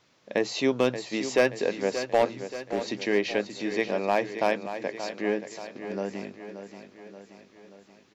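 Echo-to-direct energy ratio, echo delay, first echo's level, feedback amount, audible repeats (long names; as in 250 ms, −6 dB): −9.0 dB, 579 ms, −10.5 dB, 55%, 5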